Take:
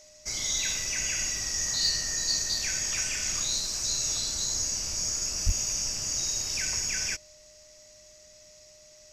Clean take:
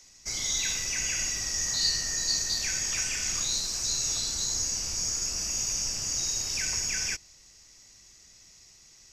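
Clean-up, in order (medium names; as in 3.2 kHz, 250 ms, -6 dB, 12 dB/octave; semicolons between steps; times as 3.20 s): clip repair -16.5 dBFS; band-stop 610 Hz, Q 30; de-plosive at 5.45 s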